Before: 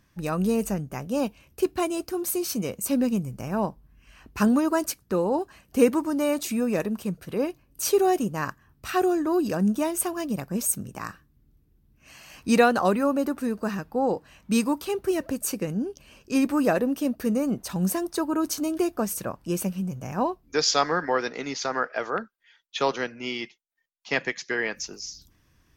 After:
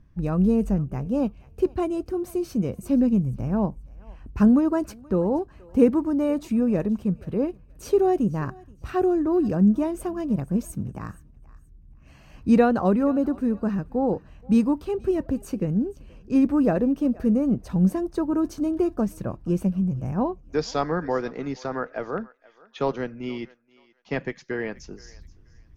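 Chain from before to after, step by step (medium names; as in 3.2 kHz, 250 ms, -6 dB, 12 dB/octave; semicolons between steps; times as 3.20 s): tilt EQ -4 dB/octave; on a send: thinning echo 477 ms, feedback 26%, high-pass 740 Hz, level -20 dB; on the sum: trim -4 dB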